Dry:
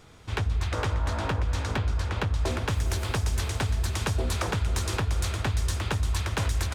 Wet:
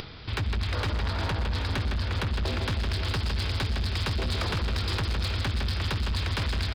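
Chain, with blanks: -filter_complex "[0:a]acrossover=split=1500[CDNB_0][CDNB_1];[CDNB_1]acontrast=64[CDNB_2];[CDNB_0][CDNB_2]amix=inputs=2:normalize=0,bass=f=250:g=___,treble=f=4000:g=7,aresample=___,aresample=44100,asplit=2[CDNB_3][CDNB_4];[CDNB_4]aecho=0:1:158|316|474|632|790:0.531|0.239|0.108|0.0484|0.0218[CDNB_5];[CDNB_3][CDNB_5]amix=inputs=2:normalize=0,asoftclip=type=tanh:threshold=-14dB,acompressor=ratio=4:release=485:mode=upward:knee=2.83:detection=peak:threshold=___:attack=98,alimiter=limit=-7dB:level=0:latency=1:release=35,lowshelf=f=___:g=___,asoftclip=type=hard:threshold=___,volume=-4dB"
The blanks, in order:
-1, 11025, -40dB, 390, 6, -20dB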